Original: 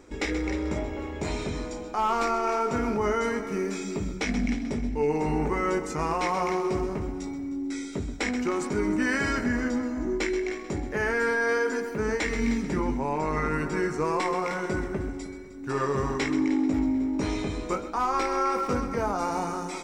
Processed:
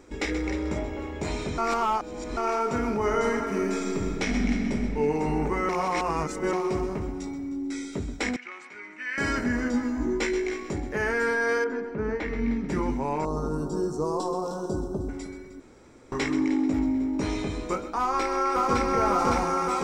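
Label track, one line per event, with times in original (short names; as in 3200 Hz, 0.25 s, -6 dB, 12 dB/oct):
1.580000	2.370000	reverse
2.940000	4.790000	reverb throw, RT60 2.9 s, DRR 3 dB
5.690000	6.530000	reverse
8.360000	9.180000	band-pass 2200 Hz, Q 2.5
9.720000	10.710000	doubler 17 ms -3 dB
11.640000	12.690000	tape spacing loss at 10 kHz 30 dB
13.250000	15.090000	Butterworth band-stop 2100 Hz, Q 0.58
15.600000	16.120000	room tone
17.990000	18.870000	echo throw 0.56 s, feedback 80%, level 0 dB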